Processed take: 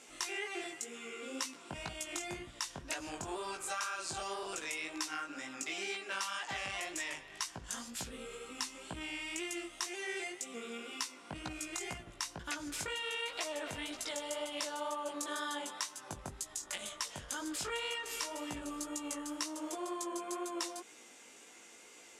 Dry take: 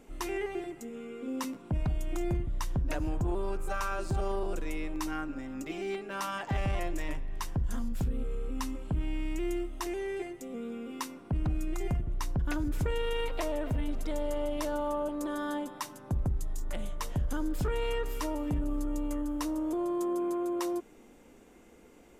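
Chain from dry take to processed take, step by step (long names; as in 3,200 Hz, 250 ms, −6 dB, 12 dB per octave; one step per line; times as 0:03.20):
meter weighting curve ITU-R 468
downward compressor 5 to 1, threshold −37 dBFS, peak gain reduction 10.5 dB
chorus effect 2 Hz, delay 16 ms, depth 5.5 ms
level +4.5 dB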